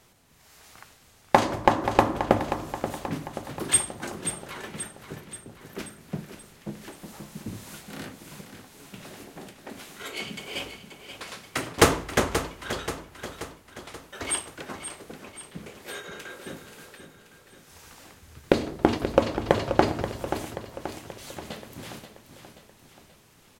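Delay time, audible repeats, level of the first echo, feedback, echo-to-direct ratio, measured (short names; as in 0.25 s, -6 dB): 0.531 s, 5, -10.0 dB, 54%, -8.5 dB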